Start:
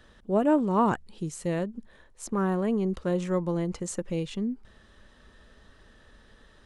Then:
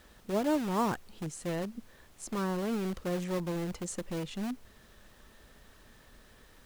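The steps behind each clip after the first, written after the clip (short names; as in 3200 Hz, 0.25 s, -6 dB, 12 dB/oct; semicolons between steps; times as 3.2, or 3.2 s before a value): in parallel at -7.5 dB: wrapped overs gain 26 dB; on the sum: added noise pink -55 dBFS; gain -6.5 dB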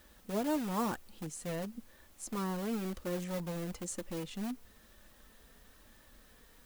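high shelf 9800 Hz +10 dB; flange 1 Hz, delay 3.3 ms, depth 1.1 ms, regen -45%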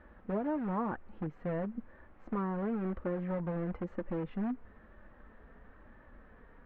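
LPF 1800 Hz 24 dB/oct; compressor 5:1, threshold -36 dBFS, peak gain reduction 7.5 dB; gain +5.5 dB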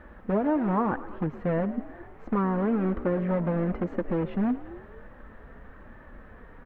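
frequency-shifting echo 0.113 s, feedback 62%, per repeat +49 Hz, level -16 dB; gain +8.5 dB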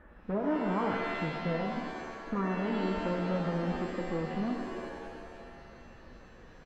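downsampling 32000 Hz; band-limited delay 0.32 s, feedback 79%, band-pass 450 Hz, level -20.5 dB; shimmer reverb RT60 1.6 s, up +7 st, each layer -2 dB, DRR 4.5 dB; gain -7.5 dB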